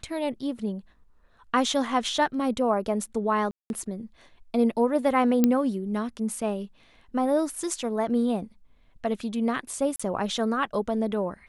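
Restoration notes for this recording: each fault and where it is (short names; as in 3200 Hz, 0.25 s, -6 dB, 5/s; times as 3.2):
3.51–3.7 gap 0.191 s
5.44 pop -8 dBFS
9.96–9.99 gap 35 ms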